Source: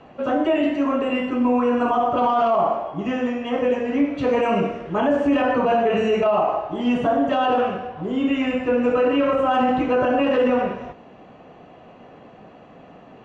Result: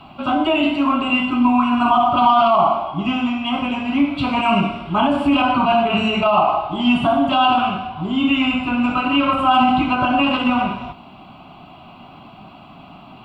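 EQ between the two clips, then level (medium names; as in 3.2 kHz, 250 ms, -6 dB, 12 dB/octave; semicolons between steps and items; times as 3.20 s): treble shelf 3.6 kHz +11.5 dB; static phaser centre 1.8 kHz, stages 6; +7.5 dB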